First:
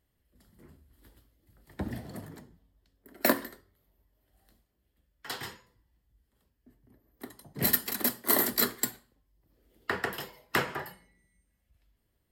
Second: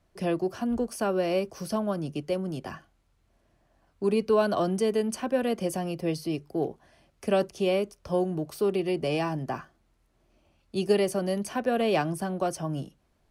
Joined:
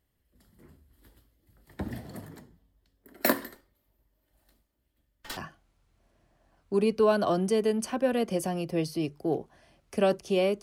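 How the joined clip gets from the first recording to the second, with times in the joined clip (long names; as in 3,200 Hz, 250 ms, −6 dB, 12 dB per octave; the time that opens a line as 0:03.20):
first
0:03.55–0:05.37: lower of the sound and its delayed copy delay 3.3 ms
0:05.37: continue with second from 0:02.67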